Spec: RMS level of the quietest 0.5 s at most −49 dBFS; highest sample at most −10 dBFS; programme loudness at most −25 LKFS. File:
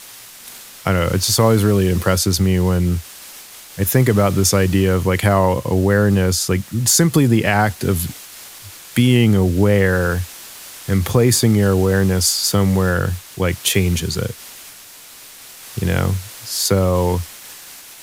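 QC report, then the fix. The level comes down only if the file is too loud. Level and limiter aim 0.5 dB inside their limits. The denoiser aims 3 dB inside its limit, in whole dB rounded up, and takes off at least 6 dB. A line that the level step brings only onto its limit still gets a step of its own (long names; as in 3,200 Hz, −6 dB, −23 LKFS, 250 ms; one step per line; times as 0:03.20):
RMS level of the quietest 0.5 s −40 dBFS: out of spec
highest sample −2.5 dBFS: out of spec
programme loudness −16.5 LKFS: out of spec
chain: broadband denoise 6 dB, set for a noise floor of −40 dBFS
level −9 dB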